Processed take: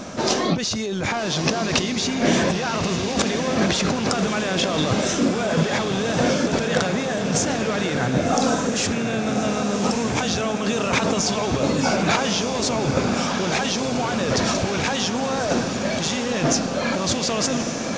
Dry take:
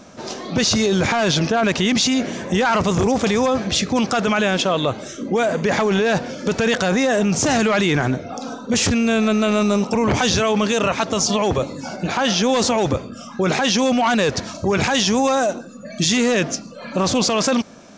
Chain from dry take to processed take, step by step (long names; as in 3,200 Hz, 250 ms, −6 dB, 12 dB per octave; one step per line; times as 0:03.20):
compressor whose output falls as the input rises −26 dBFS, ratio −1
feedback delay with all-pass diffusion 1,168 ms, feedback 61%, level −5.5 dB
level +2.5 dB